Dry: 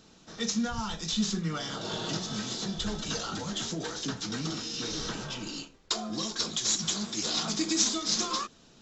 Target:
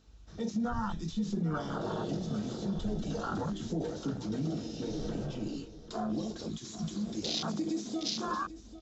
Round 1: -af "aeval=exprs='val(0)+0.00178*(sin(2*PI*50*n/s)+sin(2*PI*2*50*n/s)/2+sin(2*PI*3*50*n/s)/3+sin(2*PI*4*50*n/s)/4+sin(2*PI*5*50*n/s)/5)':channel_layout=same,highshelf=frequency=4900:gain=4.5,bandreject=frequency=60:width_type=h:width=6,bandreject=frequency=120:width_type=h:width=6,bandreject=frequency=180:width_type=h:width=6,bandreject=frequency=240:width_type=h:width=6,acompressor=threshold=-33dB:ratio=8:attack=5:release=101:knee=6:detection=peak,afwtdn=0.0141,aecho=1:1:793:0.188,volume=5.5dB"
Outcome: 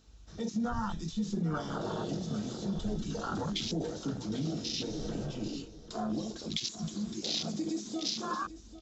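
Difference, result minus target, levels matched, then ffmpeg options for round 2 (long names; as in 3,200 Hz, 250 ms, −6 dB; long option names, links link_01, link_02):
4,000 Hz band +3.5 dB
-af "aeval=exprs='val(0)+0.00178*(sin(2*PI*50*n/s)+sin(2*PI*2*50*n/s)/2+sin(2*PI*3*50*n/s)/3+sin(2*PI*4*50*n/s)/4+sin(2*PI*5*50*n/s)/5)':channel_layout=same,highshelf=frequency=4900:gain=-2.5,bandreject=frequency=60:width_type=h:width=6,bandreject=frequency=120:width_type=h:width=6,bandreject=frequency=180:width_type=h:width=6,bandreject=frequency=240:width_type=h:width=6,acompressor=threshold=-33dB:ratio=8:attack=5:release=101:knee=6:detection=peak,afwtdn=0.0141,aecho=1:1:793:0.188,volume=5.5dB"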